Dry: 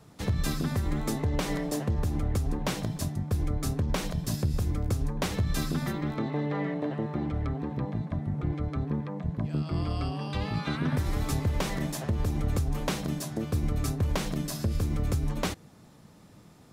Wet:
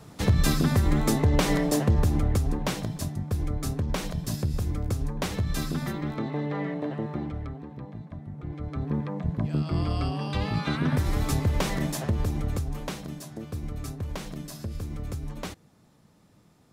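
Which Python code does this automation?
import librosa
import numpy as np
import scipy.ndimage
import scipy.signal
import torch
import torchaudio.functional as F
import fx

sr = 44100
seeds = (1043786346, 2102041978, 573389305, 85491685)

y = fx.gain(x, sr, db=fx.line((1.96, 6.5), (2.89, 0.0), (7.13, 0.0), (7.67, -8.0), (8.38, -8.0), (8.98, 3.0), (12.05, 3.0), (13.09, -6.0)))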